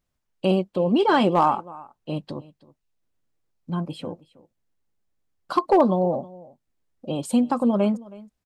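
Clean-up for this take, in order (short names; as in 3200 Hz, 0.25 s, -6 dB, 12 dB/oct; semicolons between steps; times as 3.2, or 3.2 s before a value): clip repair -10 dBFS; inverse comb 0.32 s -21 dB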